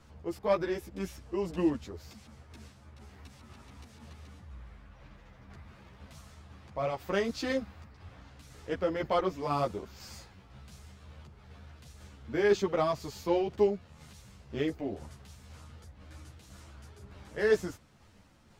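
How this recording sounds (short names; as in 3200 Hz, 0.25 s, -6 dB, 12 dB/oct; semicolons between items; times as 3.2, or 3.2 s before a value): tremolo saw down 2 Hz, depth 35%; a shimmering, thickened sound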